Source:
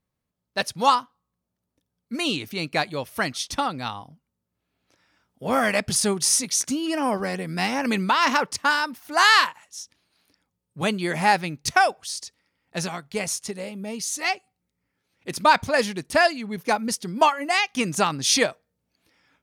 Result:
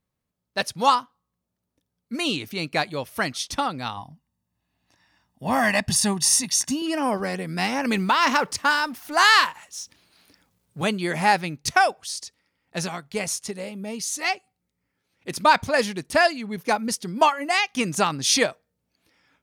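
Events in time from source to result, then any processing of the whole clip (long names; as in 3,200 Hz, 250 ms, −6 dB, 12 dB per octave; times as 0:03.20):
0:03.97–0:06.82: comb filter 1.1 ms
0:07.91–0:10.82: mu-law and A-law mismatch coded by mu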